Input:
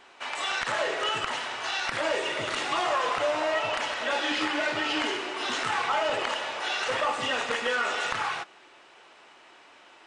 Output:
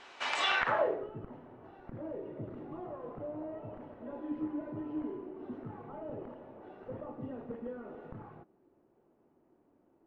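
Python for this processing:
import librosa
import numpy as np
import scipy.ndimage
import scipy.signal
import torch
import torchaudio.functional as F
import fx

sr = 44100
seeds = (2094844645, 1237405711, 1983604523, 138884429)

y = fx.filter_sweep_lowpass(x, sr, from_hz=6500.0, to_hz=250.0, start_s=0.35, end_s=1.08, q=0.97)
y = fx.dmg_tone(y, sr, hz=1000.0, level_db=-57.0, at=(4.05, 5.24), fade=0.02)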